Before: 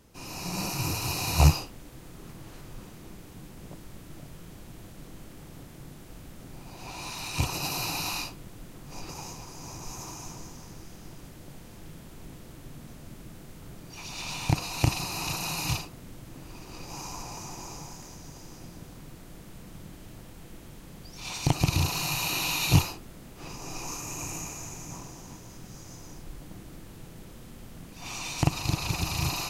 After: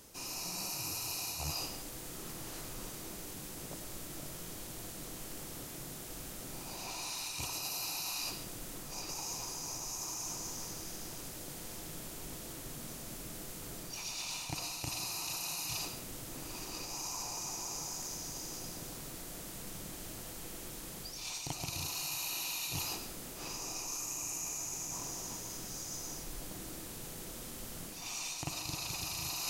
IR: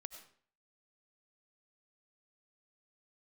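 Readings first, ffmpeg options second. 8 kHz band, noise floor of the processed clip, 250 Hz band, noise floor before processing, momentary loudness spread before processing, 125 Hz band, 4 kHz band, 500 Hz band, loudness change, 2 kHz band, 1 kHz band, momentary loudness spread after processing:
-0.5 dB, -46 dBFS, -11.0 dB, -47 dBFS, 20 LU, -17.0 dB, -5.0 dB, -7.0 dB, -9.0 dB, -9.0 dB, -9.0 dB, 8 LU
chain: -filter_complex "[0:a]bass=f=250:g=-7,treble=f=4k:g=9,areverse,acompressor=threshold=-40dB:ratio=5,areverse[a];[1:a]atrim=start_sample=2205[b];[a][b]afir=irnorm=-1:irlink=0,volume=7dB"

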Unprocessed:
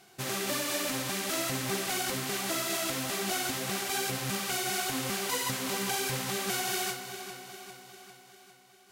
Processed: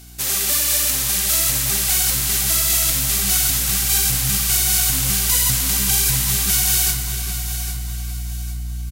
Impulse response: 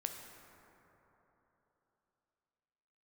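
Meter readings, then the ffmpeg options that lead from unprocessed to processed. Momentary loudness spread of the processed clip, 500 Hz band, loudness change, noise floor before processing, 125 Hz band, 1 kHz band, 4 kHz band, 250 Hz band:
12 LU, -2.5 dB, +14.5 dB, -58 dBFS, +16.0 dB, +1.5 dB, +11.5 dB, +3.5 dB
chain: -filter_complex "[0:a]crystalizer=i=6.5:c=0,aeval=exprs='val(0)+0.00794*(sin(2*PI*60*n/s)+sin(2*PI*2*60*n/s)/2+sin(2*PI*3*60*n/s)/3+sin(2*PI*4*60*n/s)/4+sin(2*PI*5*60*n/s)/5)':c=same,asubboost=boost=11.5:cutoff=120,aecho=1:1:807|1614|2421:0.251|0.0829|0.0274,asplit=2[a][b];[1:a]atrim=start_sample=2205[c];[b][c]afir=irnorm=-1:irlink=0,volume=-1dB[d];[a][d]amix=inputs=2:normalize=0,volume=-5.5dB"

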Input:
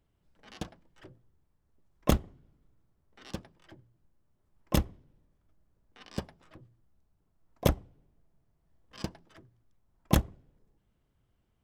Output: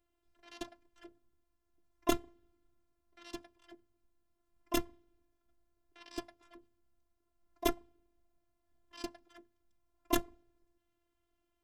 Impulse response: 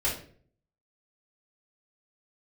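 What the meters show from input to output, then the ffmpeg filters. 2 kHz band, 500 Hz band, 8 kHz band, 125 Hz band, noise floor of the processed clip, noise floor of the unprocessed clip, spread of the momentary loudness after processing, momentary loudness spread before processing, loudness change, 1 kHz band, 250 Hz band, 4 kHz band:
-2.0 dB, -3.0 dB, -2.0 dB, -21.5 dB, -81 dBFS, -74 dBFS, 22 LU, 15 LU, -5.5 dB, -1.5 dB, -5.0 dB, -2.5 dB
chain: -af "afftfilt=real='hypot(re,im)*cos(PI*b)':imag='0':win_size=512:overlap=0.75,lowshelf=f=110:g=-7.5,volume=1dB"

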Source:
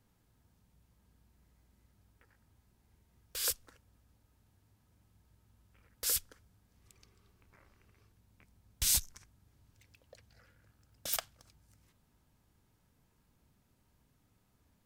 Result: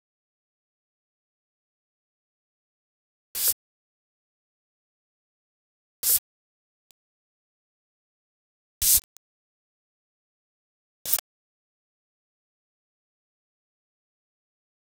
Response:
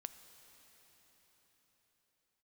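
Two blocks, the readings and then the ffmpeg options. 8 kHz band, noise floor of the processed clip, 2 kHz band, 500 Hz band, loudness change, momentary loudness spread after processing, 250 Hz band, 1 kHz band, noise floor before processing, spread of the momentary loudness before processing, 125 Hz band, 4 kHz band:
+9.0 dB, under -85 dBFS, +2.5 dB, 0.0 dB, +10.0 dB, 13 LU, n/a, +1.5 dB, -73 dBFS, 14 LU, -1.0 dB, +5.0 dB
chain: -af "crystalizer=i=2:c=0,aeval=exprs='val(0)*gte(abs(val(0)),0.0282)':c=same"

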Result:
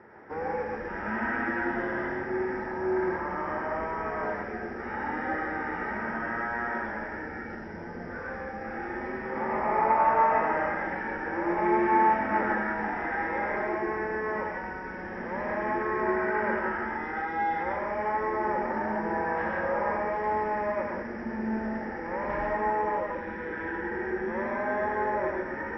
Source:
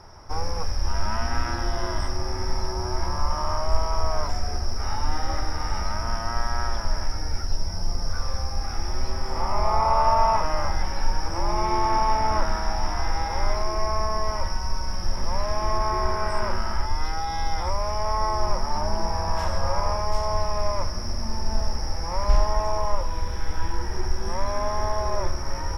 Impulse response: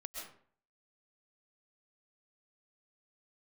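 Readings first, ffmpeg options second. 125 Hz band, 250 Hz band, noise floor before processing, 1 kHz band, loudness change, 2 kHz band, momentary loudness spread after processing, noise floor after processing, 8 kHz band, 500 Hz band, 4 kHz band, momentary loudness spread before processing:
-15.0 dB, +4.5 dB, -29 dBFS, -2.0 dB, -2.0 dB, +6.0 dB, 10 LU, -38 dBFS, n/a, +0.5 dB, under -20 dB, 8 LU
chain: -filter_complex "[0:a]highpass=210,equalizer=f=220:t=q:w=4:g=9,equalizer=f=330:t=q:w=4:g=5,equalizer=f=470:t=q:w=4:g=7,equalizer=f=690:t=q:w=4:g=-7,equalizer=f=1.1k:t=q:w=4:g=-8,equalizer=f=1.8k:t=q:w=4:g=10,lowpass=f=2.3k:w=0.5412,lowpass=f=2.3k:w=1.3066[a];[1:a]atrim=start_sample=2205,asetrate=52920,aresample=44100[b];[a][b]afir=irnorm=-1:irlink=0,volume=5dB"

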